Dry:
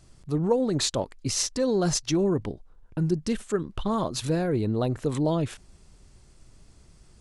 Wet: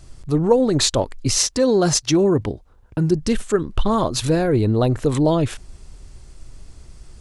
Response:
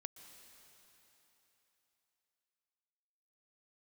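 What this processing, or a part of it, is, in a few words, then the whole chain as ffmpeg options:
low shelf boost with a cut just above: -filter_complex "[0:a]asettb=1/sr,asplit=3[s0][s1][s2];[s0]atrim=end=1.384[s3];[s1]atrim=start=1.38:end=3.15,asetpts=PTS-STARTPTS,afade=t=in:d=0.004:c=qsin,afade=t=out:st=1.766:d=0.004:c=qsin,highpass=53[s4];[s2]atrim=start=3.146[s5];[s3][s4]acrossfade=d=0.004:c1=hsin:c2=qsin[s6];[s6][s5]acrossfade=d=0.004:c1=qsin:c2=hsin,lowshelf=f=67:g=8,equalizer=f=180:t=o:w=0.54:g=-4.5,volume=2.51"

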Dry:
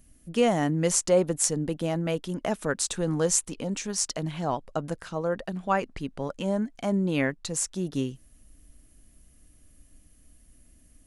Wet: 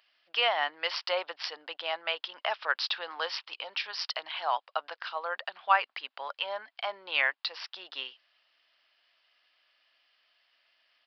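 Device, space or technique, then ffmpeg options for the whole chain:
musical greeting card: -af "aresample=11025,aresample=44100,highpass=f=830:w=0.5412,highpass=f=830:w=1.3066,equalizer=f=3000:t=o:w=0.48:g=5,volume=1.68"

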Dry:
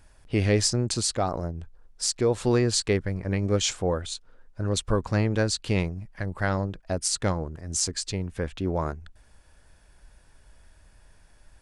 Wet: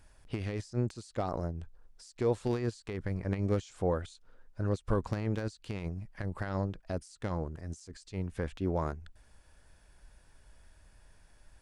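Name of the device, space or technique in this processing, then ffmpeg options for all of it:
de-esser from a sidechain: -filter_complex "[0:a]asplit=2[s0][s1];[s1]highpass=4200,apad=whole_len=512151[s2];[s0][s2]sidechaincompress=threshold=0.00355:ratio=8:attack=2.1:release=48,volume=0.631"

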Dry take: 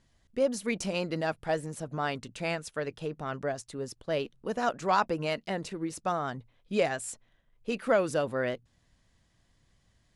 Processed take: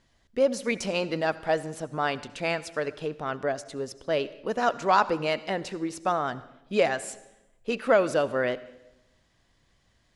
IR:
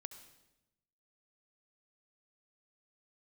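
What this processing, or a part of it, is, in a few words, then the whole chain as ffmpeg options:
filtered reverb send: -filter_complex "[0:a]asplit=2[s0][s1];[s1]highpass=220,lowpass=7100[s2];[1:a]atrim=start_sample=2205[s3];[s2][s3]afir=irnorm=-1:irlink=0,volume=1.26[s4];[s0][s4]amix=inputs=2:normalize=0"

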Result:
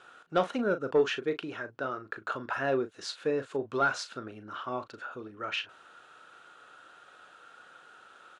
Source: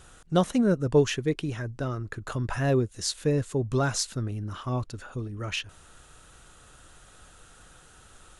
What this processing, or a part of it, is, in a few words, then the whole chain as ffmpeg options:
intercom: -filter_complex "[0:a]highpass=400,lowpass=3700,equalizer=f=1400:t=o:w=0.22:g=8,equalizer=f=6000:t=o:w=0.77:g=-3,bandreject=f=2000:w=18,asoftclip=type=tanh:threshold=0.188,asplit=2[s0][s1];[s1]adelay=37,volume=0.282[s2];[s0][s2]amix=inputs=2:normalize=0"

